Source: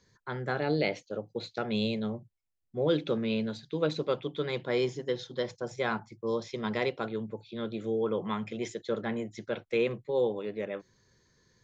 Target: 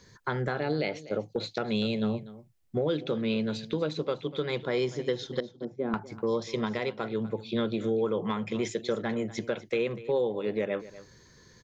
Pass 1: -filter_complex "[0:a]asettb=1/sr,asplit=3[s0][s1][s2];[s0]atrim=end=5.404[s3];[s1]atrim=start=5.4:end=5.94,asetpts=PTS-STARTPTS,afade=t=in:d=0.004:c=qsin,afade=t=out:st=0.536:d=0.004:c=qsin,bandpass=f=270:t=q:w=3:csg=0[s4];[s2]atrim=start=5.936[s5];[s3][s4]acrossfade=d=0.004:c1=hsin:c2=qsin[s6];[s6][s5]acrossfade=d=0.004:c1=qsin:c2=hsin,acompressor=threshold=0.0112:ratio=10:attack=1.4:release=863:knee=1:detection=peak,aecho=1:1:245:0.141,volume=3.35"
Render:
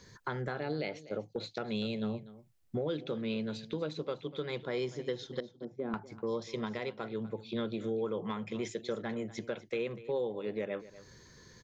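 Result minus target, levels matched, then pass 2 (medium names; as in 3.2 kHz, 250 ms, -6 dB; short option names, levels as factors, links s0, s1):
compression: peak gain reduction +6.5 dB
-filter_complex "[0:a]asettb=1/sr,asplit=3[s0][s1][s2];[s0]atrim=end=5.404[s3];[s1]atrim=start=5.4:end=5.94,asetpts=PTS-STARTPTS,afade=t=in:d=0.004:c=qsin,afade=t=out:st=0.536:d=0.004:c=qsin,bandpass=f=270:t=q:w=3:csg=0[s4];[s2]atrim=start=5.936[s5];[s3][s4]acrossfade=d=0.004:c1=hsin:c2=qsin[s6];[s6][s5]acrossfade=d=0.004:c1=qsin:c2=hsin,acompressor=threshold=0.0251:ratio=10:attack=1.4:release=863:knee=1:detection=peak,aecho=1:1:245:0.141,volume=3.35"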